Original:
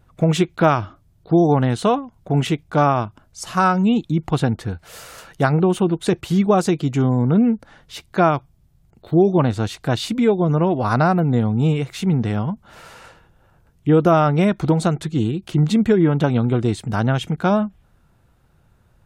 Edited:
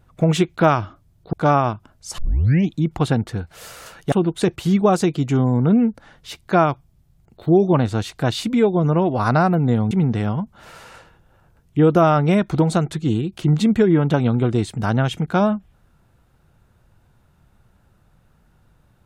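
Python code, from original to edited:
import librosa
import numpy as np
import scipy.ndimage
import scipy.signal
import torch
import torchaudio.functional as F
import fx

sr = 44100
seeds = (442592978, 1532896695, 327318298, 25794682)

y = fx.edit(x, sr, fx.cut(start_s=1.33, length_s=1.32),
    fx.tape_start(start_s=3.5, length_s=0.54),
    fx.cut(start_s=5.44, length_s=0.33),
    fx.cut(start_s=11.56, length_s=0.45), tone=tone)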